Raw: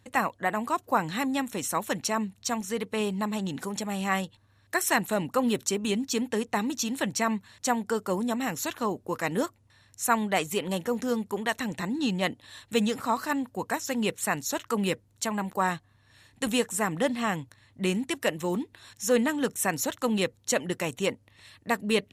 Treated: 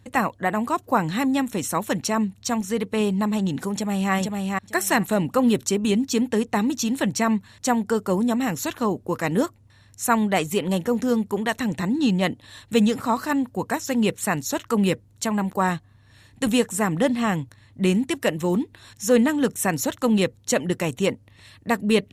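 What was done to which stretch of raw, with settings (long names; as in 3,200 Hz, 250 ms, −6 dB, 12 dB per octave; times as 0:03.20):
0:03.73–0:04.13: delay throw 450 ms, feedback 15%, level −3 dB
whole clip: low-shelf EQ 360 Hz +7.5 dB; level +2.5 dB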